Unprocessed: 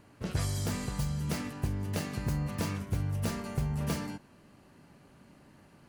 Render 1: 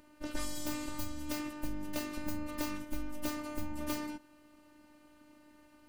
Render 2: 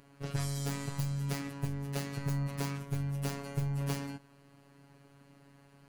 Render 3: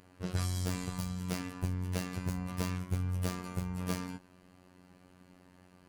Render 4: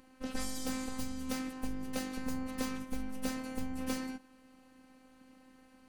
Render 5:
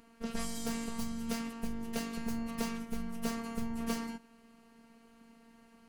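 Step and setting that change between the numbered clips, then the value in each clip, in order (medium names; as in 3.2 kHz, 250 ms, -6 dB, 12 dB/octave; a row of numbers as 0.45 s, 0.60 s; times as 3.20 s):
robot voice, frequency: 300 Hz, 140 Hz, 91 Hz, 260 Hz, 230 Hz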